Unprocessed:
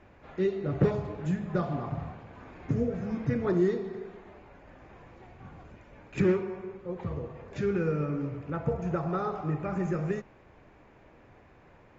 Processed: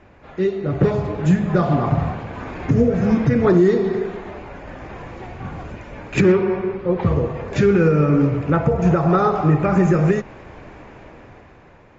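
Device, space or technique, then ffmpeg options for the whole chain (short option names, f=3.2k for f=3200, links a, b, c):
low-bitrate web radio: -filter_complex "[0:a]asettb=1/sr,asplit=3[a][b][c];[a]atrim=end=6.324[d];[b]atrim=start=6.32:end=7.05,asetpts=PTS-STARTPTS,afade=t=in:d=0.004:c=qsin,afade=t=out:st=0.726:d=0.004:c=qsin,lowpass=f=5.2k:w=0.5412,lowpass=f=5.2k:w=1.3066[e];[c]atrim=start=7.046[f];[d][e]acrossfade=d=0.004:c1=hsin:c2=qsin[g];[g][f]acrossfade=d=0.004:c1=qsin:c2=hsin,dynaudnorm=f=210:g=11:m=10dB,alimiter=limit=-13.5dB:level=0:latency=1:release=192,volume=7.5dB" -ar 44100 -c:a libmp3lame -b:a 48k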